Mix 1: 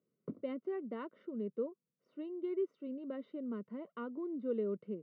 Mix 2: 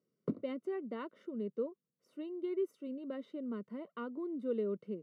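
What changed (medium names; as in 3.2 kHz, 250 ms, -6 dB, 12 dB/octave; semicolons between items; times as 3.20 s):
background +7.0 dB; master: remove distance through air 250 m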